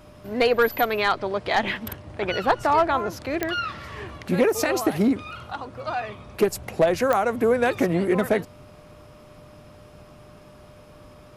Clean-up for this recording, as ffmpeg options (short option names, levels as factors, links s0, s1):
-af "adeclick=t=4,bandreject=f=600:w=30"